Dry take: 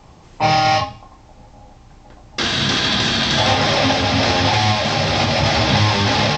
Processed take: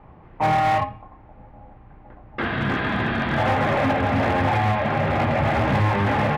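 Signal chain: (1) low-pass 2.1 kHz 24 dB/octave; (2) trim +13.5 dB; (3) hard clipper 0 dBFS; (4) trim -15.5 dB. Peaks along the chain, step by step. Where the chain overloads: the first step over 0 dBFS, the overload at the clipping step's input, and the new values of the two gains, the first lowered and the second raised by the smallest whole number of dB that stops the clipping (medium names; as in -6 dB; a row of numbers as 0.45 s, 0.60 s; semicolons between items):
-4.5 dBFS, +9.0 dBFS, 0.0 dBFS, -15.5 dBFS; step 2, 9.0 dB; step 2 +4.5 dB, step 4 -6.5 dB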